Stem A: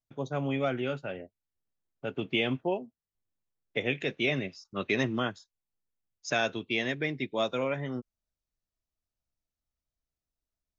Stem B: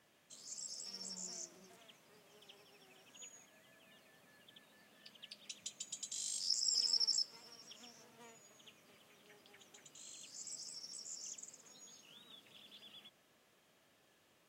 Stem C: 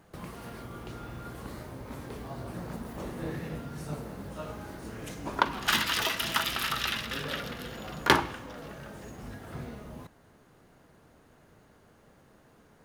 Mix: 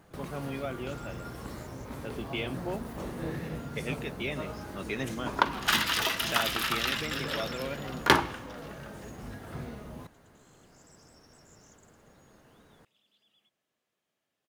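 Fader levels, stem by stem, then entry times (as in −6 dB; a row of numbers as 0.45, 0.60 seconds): −6.5, −13.0, +0.5 decibels; 0.00, 0.40, 0.00 seconds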